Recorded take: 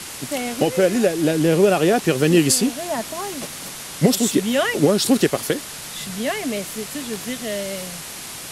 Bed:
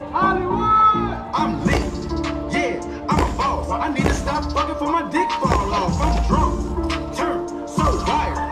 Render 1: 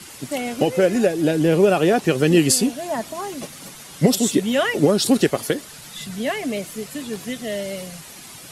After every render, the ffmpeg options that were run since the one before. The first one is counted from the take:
ffmpeg -i in.wav -af "afftdn=noise_reduction=9:noise_floor=-34" out.wav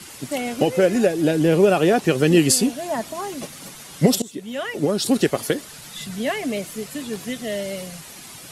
ffmpeg -i in.wav -filter_complex "[0:a]asplit=2[link_01][link_02];[link_01]atrim=end=4.22,asetpts=PTS-STARTPTS,afade=type=out:start_time=4.216:duration=0.004:curve=hsin:silence=0.0841395[link_03];[link_02]atrim=start=4.22,asetpts=PTS-STARTPTS,afade=type=in:duration=1.2:silence=0.0841395[link_04];[link_03][link_04]concat=n=2:v=0:a=1" out.wav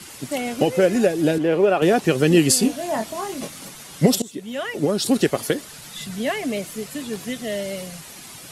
ffmpeg -i in.wav -filter_complex "[0:a]asettb=1/sr,asplit=3[link_01][link_02][link_03];[link_01]atrim=end=1.384[link_04];[link_02]atrim=start=1.38:end=1.82,asetpts=PTS-STARTPTS,afade=type=in:duration=0.004:curve=qsin,afade=type=out:start_time=0.436:duration=0.004:curve=qsin,bass=frequency=250:gain=-11,treble=frequency=4000:gain=-14[link_05];[link_03]atrim=start=1.816[link_06];[link_04][link_05]acrossfade=duration=0.004:curve1=hsin:curve2=qsin[link_07];[link_07][link_06]acrossfade=duration=0.004:curve1=qsin:curve2=hsin,asettb=1/sr,asplit=3[link_08][link_09][link_10];[link_08]atrim=end=2.604[link_11];[link_09]atrim=start=2.6:end=3.65,asetpts=PTS-STARTPTS,afade=type=in:duration=0.004:curve=qsin,afade=type=out:start_time=1.046:duration=0.004:curve=qsin,asplit=2[link_12][link_13];[link_13]adelay=23,volume=-5.5dB[link_14];[link_12][link_14]amix=inputs=2:normalize=0,atrim=end_sample=46305[link_15];[link_10]atrim=start=3.646[link_16];[link_11][link_15]acrossfade=duration=0.004:curve1=hsin:curve2=qsin[link_17];[link_17][link_16]acrossfade=duration=0.004:curve1=qsin:curve2=hsin" out.wav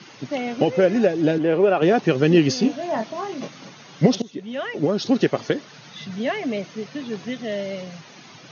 ffmpeg -i in.wav -af "afftfilt=real='re*between(b*sr/4096,100,6700)':imag='im*between(b*sr/4096,100,6700)':win_size=4096:overlap=0.75,highshelf=frequency=5100:gain=-10" out.wav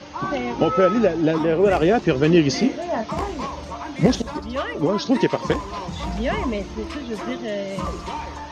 ffmpeg -i in.wav -i bed.wav -filter_complex "[1:a]volume=-10.5dB[link_01];[0:a][link_01]amix=inputs=2:normalize=0" out.wav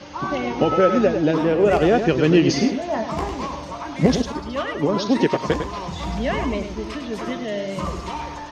ffmpeg -i in.wav -af "aecho=1:1:102:0.398" out.wav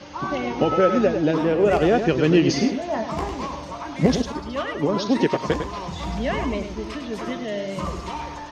ffmpeg -i in.wav -af "volume=-1.5dB" out.wav

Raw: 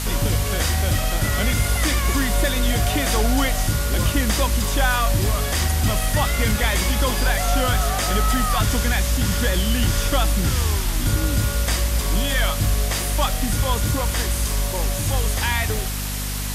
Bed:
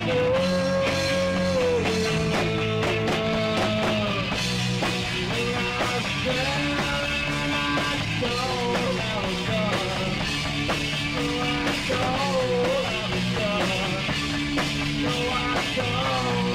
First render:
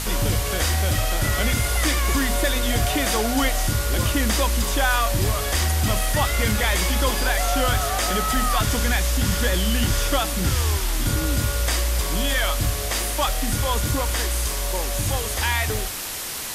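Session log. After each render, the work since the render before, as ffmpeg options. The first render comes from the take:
ffmpeg -i in.wav -af "bandreject=frequency=50:width_type=h:width=6,bandreject=frequency=100:width_type=h:width=6,bandreject=frequency=150:width_type=h:width=6,bandreject=frequency=200:width_type=h:width=6,bandreject=frequency=250:width_type=h:width=6" out.wav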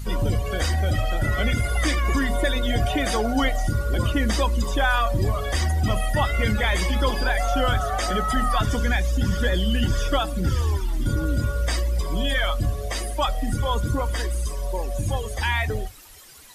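ffmpeg -i in.wav -af "afftdn=noise_reduction=19:noise_floor=-27" out.wav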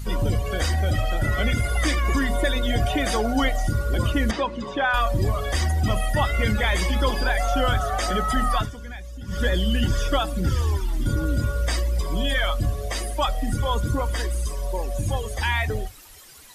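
ffmpeg -i in.wav -filter_complex "[0:a]asettb=1/sr,asplit=3[link_01][link_02][link_03];[link_01]atrim=end=4.314[link_04];[link_02]atrim=start=4.31:end=4.94,asetpts=PTS-STARTPTS,afade=type=in:duration=0.004:curve=qsin,afade=type=out:start_time=0.626:duration=0.004:curve=qsin,highpass=160,lowpass=3100[link_05];[link_03]atrim=start=4.936[link_06];[link_04][link_05]acrossfade=duration=0.004:curve1=hsin:curve2=qsin[link_07];[link_07][link_06]acrossfade=duration=0.004:curve1=qsin:curve2=hsin,asplit=3[link_08][link_09][link_10];[link_08]atrim=end=8.71,asetpts=PTS-STARTPTS,afade=type=out:start_time=8.51:duration=0.2:curve=qsin:silence=0.188365[link_11];[link_09]atrim=start=8.71:end=9.27,asetpts=PTS-STARTPTS,volume=-14.5dB[link_12];[link_10]atrim=start=9.27,asetpts=PTS-STARTPTS,afade=type=in:duration=0.2:curve=qsin:silence=0.188365[link_13];[link_11][link_12][link_13]concat=n=3:v=0:a=1" out.wav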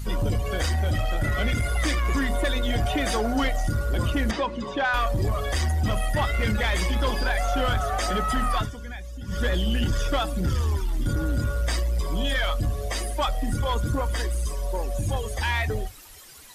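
ffmpeg -i in.wav -af "asoftclip=type=tanh:threshold=-17dB" out.wav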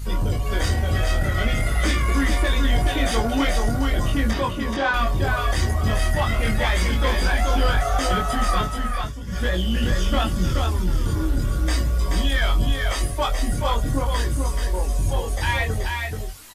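ffmpeg -i in.wav -filter_complex "[0:a]asplit=2[link_01][link_02];[link_02]adelay=22,volume=-3dB[link_03];[link_01][link_03]amix=inputs=2:normalize=0,aecho=1:1:430:0.631" out.wav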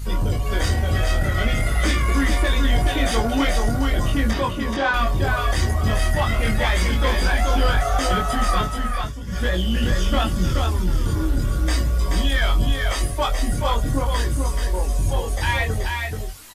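ffmpeg -i in.wav -af "volume=1dB" out.wav

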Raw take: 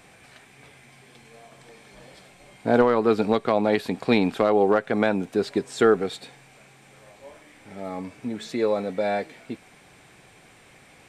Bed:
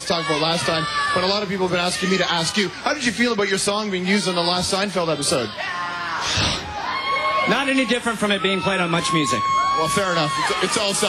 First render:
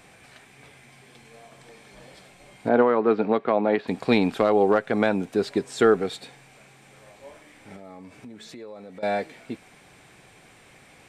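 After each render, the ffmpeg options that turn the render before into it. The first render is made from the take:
ffmpeg -i in.wav -filter_complex "[0:a]asplit=3[link_01][link_02][link_03];[link_01]afade=type=out:start_time=2.68:duration=0.02[link_04];[link_02]highpass=180,lowpass=2300,afade=type=in:start_time=2.68:duration=0.02,afade=type=out:start_time=3.87:duration=0.02[link_05];[link_03]afade=type=in:start_time=3.87:duration=0.02[link_06];[link_04][link_05][link_06]amix=inputs=3:normalize=0,asettb=1/sr,asplit=3[link_07][link_08][link_09];[link_07]atrim=end=7.764[link_10];[link_08]atrim=start=7.76:end=9.03,asetpts=PTS-STARTPTS,afade=type=in:duration=0.004:curve=qsin,afade=type=out:start_time=1.266:duration=0.004:curve=qsin,acompressor=threshold=-41dB:ratio=4:attack=3.2:release=140:knee=1:detection=peak[link_11];[link_09]atrim=start=9.026[link_12];[link_10][link_11]acrossfade=duration=0.004:curve1=hsin:curve2=qsin[link_13];[link_13][link_12]acrossfade=duration=0.004:curve1=qsin:curve2=hsin" out.wav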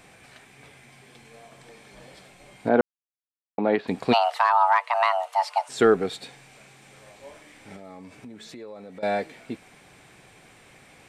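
ffmpeg -i in.wav -filter_complex "[0:a]asplit=3[link_01][link_02][link_03];[link_01]afade=type=out:start_time=4.12:duration=0.02[link_04];[link_02]afreqshift=470,afade=type=in:start_time=4.12:duration=0.02,afade=type=out:start_time=5.68:duration=0.02[link_05];[link_03]afade=type=in:start_time=5.68:duration=0.02[link_06];[link_04][link_05][link_06]amix=inputs=3:normalize=0,asettb=1/sr,asplit=3[link_07][link_08][link_09];[link_07]atrim=end=6.204[link_10];[link_08]atrim=start=6.2:end=8.15,asetpts=PTS-STARTPTS,afade=type=in:duration=0.004:curve=qsin,afade=type=out:start_time=1.946:duration=0.004:curve=qsin,equalizer=frequency=5300:width_type=o:width=2.2:gain=3[link_11];[link_09]atrim=start=8.146[link_12];[link_10][link_11]acrossfade=duration=0.004:curve1=hsin:curve2=qsin[link_13];[link_13][link_12]acrossfade=duration=0.004:curve1=qsin:curve2=hsin,asplit=3[link_14][link_15][link_16];[link_14]atrim=end=2.81,asetpts=PTS-STARTPTS,afade=type=out:start_time=2.806:duration=0.004:curve=hsin[link_17];[link_15]atrim=start=2.81:end=3.58,asetpts=PTS-STARTPTS,volume=0[link_18];[link_16]atrim=start=3.58,asetpts=PTS-STARTPTS,afade=type=in:duration=0.004:curve=hsin[link_19];[link_17][link_18][link_19]concat=n=3:v=0:a=1" out.wav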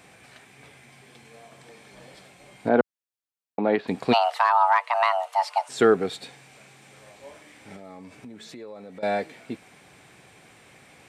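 ffmpeg -i in.wav -af "highpass=65" out.wav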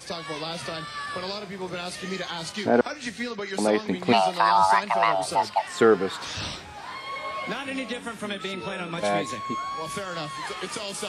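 ffmpeg -i in.wav -i bed.wav -filter_complex "[1:a]volume=-12.5dB[link_01];[0:a][link_01]amix=inputs=2:normalize=0" out.wav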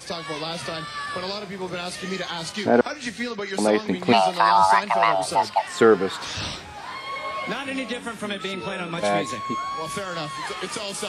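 ffmpeg -i in.wav -af "volume=2.5dB" out.wav

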